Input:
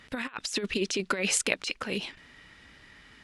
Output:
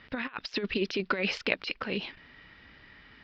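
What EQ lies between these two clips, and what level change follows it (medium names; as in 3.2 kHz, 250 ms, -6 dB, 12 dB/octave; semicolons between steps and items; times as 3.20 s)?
elliptic low-pass 5.1 kHz, stop band 60 dB; distance through air 110 m; +1.0 dB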